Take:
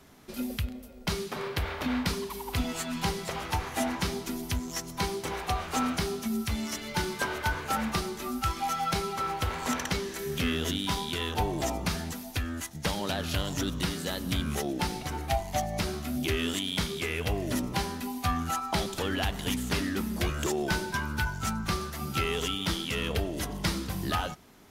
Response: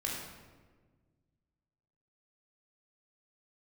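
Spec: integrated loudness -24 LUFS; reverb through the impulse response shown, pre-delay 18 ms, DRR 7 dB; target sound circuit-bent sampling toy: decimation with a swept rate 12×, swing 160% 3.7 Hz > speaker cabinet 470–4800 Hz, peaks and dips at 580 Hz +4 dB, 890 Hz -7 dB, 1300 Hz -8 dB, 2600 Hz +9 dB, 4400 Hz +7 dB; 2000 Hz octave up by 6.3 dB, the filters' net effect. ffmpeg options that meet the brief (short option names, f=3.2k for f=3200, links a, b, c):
-filter_complex "[0:a]equalizer=f=2k:t=o:g=4.5,asplit=2[a][b];[1:a]atrim=start_sample=2205,adelay=18[c];[b][c]afir=irnorm=-1:irlink=0,volume=-10.5dB[d];[a][d]amix=inputs=2:normalize=0,acrusher=samples=12:mix=1:aa=0.000001:lfo=1:lforange=19.2:lforate=3.7,highpass=470,equalizer=f=580:t=q:w=4:g=4,equalizer=f=890:t=q:w=4:g=-7,equalizer=f=1.3k:t=q:w=4:g=-8,equalizer=f=2.6k:t=q:w=4:g=9,equalizer=f=4.4k:t=q:w=4:g=7,lowpass=f=4.8k:w=0.5412,lowpass=f=4.8k:w=1.3066,volume=7dB"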